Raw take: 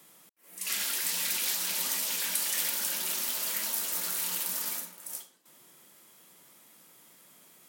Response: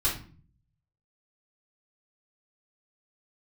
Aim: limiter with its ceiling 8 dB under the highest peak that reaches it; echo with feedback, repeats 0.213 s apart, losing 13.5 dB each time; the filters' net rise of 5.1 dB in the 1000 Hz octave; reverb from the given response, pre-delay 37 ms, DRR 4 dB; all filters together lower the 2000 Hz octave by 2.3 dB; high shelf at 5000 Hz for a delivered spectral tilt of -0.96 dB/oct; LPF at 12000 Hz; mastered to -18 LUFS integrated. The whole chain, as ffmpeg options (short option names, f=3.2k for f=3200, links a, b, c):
-filter_complex "[0:a]lowpass=12k,equalizer=f=1k:t=o:g=7.5,equalizer=f=2k:t=o:g=-3.5,highshelf=f=5k:g=-8.5,alimiter=level_in=5dB:limit=-24dB:level=0:latency=1,volume=-5dB,aecho=1:1:213|426:0.211|0.0444,asplit=2[a][b];[1:a]atrim=start_sample=2205,adelay=37[c];[b][c]afir=irnorm=-1:irlink=0,volume=-13dB[d];[a][d]amix=inputs=2:normalize=0,volume=18.5dB"